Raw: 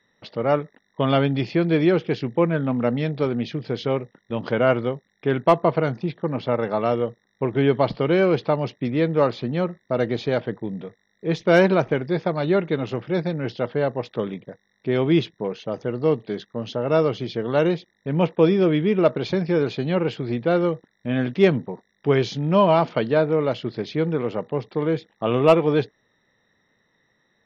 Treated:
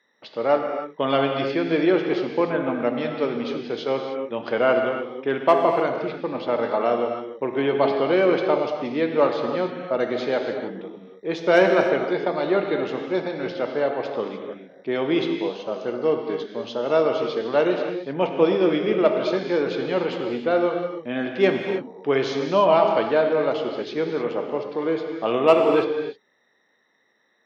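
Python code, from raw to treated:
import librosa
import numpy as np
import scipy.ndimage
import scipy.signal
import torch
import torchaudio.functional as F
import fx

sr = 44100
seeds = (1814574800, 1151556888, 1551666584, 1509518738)

y = scipy.signal.sosfilt(scipy.signal.butter(2, 320.0, 'highpass', fs=sr, output='sos'), x)
y = fx.high_shelf(y, sr, hz=5200.0, db=-4.0)
y = fx.rev_gated(y, sr, seeds[0], gate_ms=330, shape='flat', drr_db=3.0)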